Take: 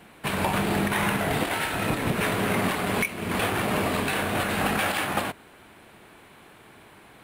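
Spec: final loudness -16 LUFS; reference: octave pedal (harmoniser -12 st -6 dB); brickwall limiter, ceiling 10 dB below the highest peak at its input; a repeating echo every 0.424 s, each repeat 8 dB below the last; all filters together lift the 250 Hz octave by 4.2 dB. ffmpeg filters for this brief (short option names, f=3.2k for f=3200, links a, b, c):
-filter_complex "[0:a]equalizer=f=250:t=o:g=5.5,alimiter=limit=-20.5dB:level=0:latency=1,aecho=1:1:424|848|1272|1696|2120:0.398|0.159|0.0637|0.0255|0.0102,asplit=2[a][b];[b]asetrate=22050,aresample=44100,atempo=2,volume=-6dB[c];[a][c]amix=inputs=2:normalize=0,volume=12dB"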